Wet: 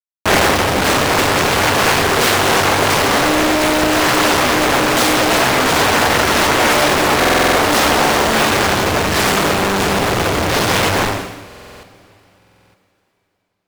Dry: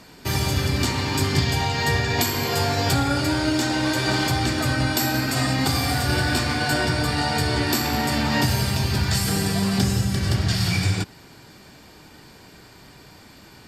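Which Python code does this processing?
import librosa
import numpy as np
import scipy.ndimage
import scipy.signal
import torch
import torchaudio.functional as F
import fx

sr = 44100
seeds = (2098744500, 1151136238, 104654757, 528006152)

y = fx.schmitt(x, sr, flips_db=-24.5)
y = fx.rev_double_slope(y, sr, seeds[0], early_s=0.83, late_s=3.5, knee_db=-25, drr_db=-6.0)
y = fx.cheby_harmonics(y, sr, harmonics=(5,), levels_db=(-7,), full_scale_db=-4.0)
y = fx.rider(y, sr, range_db=10, speed_s=0.5)
y = fx.bass_treble(y, sr, bass_db=-13, treble_db=-2)
y = fx.buffer_glitch(y, sr, at_s=(7.19, 11.46, 12.37), block=2048, repeats=7)
y = fx.doppler_dist(y, sr, depth_ms=0.9)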